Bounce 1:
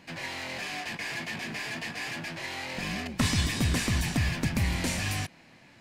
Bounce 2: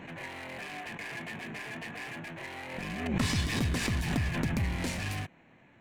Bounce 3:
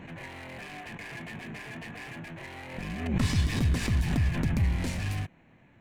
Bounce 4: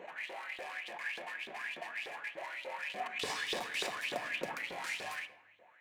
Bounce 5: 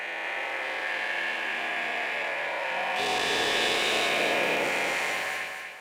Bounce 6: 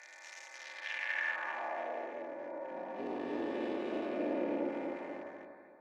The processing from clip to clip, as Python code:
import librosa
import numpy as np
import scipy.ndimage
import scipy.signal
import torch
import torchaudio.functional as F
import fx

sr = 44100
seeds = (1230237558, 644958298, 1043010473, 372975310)

y1 = fx.wiener(x, sr, points=9)
y1 = fx.peak_eq(y1, sr, hz=420.0, db=2.5, octaves=0.37)
y1 = fx.pre_swell(y1, sr, db_per_s=46.0)
y1 = F.gain(torch.from_numpy(y1), -3.5).numpy()
y2 = fx.low_shelf(y1, sr, hz=150.0, db=10.5)
y2 = F.gain(torch.from_numpy(y2), -2.0).numpy()
y3 = fx.filter_lfo_highpass(y2, sr, shape='saw_up', hz=3.4, low_hz=430.0, high_hz=3700.0, q=5.7)
y3 = fx.room_shoebox(y3, sr, seeds[0], volume_m3=2300.0, walls='furnished', distance_m=0.99)
y3 = F.gain(torch.from_numpy(y3), -5.5).numpy()
y4 = fx.spec_dilate(y3, sr, span_ms=480)
y4 = fx.echo_feedback(y4, sr, ms=243, feedback_pct=41, wet_db=-5.0)
y5 = fx.wiener(y4, sr, points=15)
y5 = y5 + 0.48 * np.pad(y5, (int(3.4 * sr / 1000.0), 0))[:len(y5)]
y5 = fx.filter_sweep_bandpass(y5, sr, from_hz=5900.0, to_hz=290.0, start_s=0.52, end_s=2.29, q=1.7)